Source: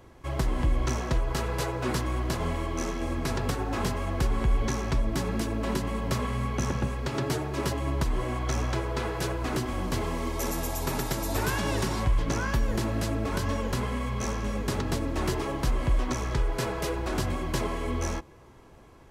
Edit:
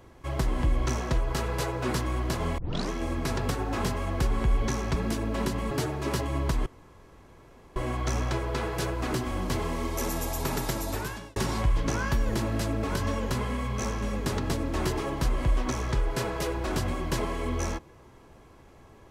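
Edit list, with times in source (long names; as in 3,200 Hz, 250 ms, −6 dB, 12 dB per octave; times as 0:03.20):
0:02.58: tape start 0.32 s
0:04.96–0:05.25: remove
0:06.00–0:07.23: remove
0:08.18: splice in room tone 1.10 s
0:11.16–0:11.78: fade out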